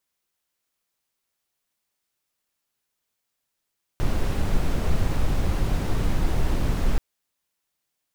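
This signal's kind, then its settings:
noise brown, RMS −20.5 dBFS 2.98 s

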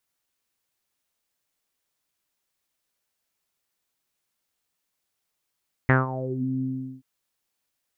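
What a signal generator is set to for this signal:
subtractive voice saw C3 24 dB per octave, low-pass 250 Hz, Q 5.5, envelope 3 octaves, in 0.54 s, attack 1.4 ms, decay 0.17 s, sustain −15.5 dB, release 0.40 s, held 0.73 s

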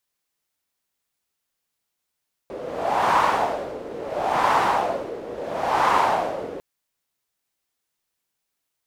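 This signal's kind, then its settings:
wind from filtered noise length 4.10 s, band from 450 Hz, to 980 Hz, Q 3.6, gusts 3, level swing 15.5 dB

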